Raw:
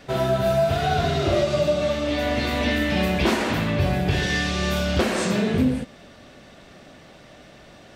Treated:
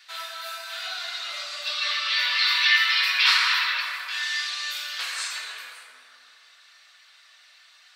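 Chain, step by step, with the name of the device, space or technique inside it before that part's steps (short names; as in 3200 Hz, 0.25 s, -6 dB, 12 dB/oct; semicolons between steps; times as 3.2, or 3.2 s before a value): reverb removal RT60 0.82 s; headphones lying on a table (HPF 1200 Hz 24 dB/oct; bell 4200 Hz +7 dB 0.35 oct); spectral gain 1.65–3.8, 890–5900 Hz +10 dB; bell 840 Hz -5 dB 2.1 oct; plate-style reverb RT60 2.6 s, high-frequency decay 0.45×, DRR -1.5 dB; gain -2 dB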